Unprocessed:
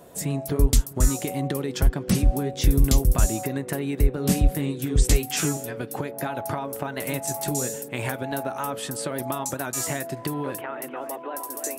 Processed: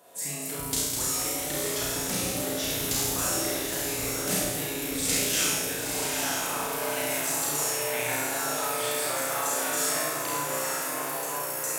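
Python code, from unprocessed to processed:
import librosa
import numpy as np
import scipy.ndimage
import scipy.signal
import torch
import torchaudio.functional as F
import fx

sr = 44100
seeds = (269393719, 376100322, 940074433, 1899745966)

p1 = fx.highpass(x, sr, hz=950.0, slope=6)
p2 = fx.room_flutter(p1, sr, wall_m=5.8, rt60_s=1.2)
p3 = fx.echo_pitch(p2, sr, ms=244, semitones=1, count=3, db_per_echo=-6.0)
p4 = fx.doubler(p3, sr, ms=49.0, db=-3.5)
p5 = p4 + fx.echo_diffused(p4, sr, ms=897, feedback_pct=44, wet_db=-4.5, dry=0)
y = p5 * 10.0 ** (-4.5 / 20.0)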